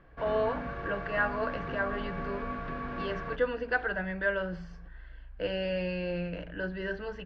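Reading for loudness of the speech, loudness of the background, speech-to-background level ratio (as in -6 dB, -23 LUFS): -33.5 LUFS, -38.0 LUFS, 4.5 dB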